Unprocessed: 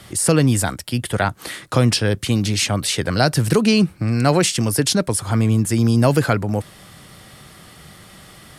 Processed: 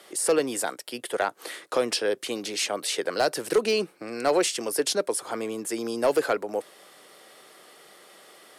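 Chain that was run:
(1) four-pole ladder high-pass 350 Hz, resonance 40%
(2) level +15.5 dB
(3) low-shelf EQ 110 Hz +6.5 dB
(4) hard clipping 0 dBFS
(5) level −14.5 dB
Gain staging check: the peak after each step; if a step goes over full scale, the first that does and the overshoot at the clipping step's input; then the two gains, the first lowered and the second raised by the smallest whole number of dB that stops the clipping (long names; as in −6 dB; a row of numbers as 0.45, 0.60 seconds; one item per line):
−10.5, +5.0, +5.0, 0.0, −14.5 dBFS
step 2, 5.0 dB
step 2 +10.5 dB, step 5 −9.5 dB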